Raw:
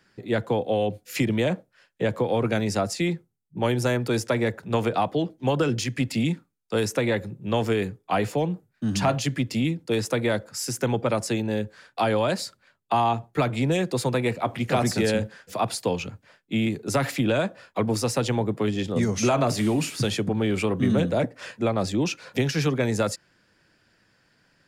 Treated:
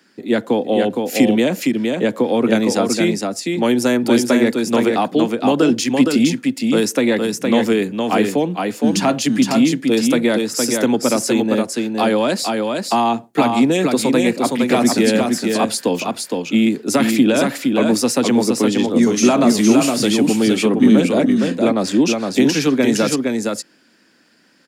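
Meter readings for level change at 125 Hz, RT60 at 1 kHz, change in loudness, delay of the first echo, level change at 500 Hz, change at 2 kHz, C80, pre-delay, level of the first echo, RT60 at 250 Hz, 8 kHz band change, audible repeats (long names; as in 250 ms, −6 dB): −0.5 dB, no reverb audible, +9.0 dB, 464 ms, +8.0 dB, +7.5 dB, no reverb audible, no reverb audible, −4.0 dB, no reverb audible, +10.5 dB, 1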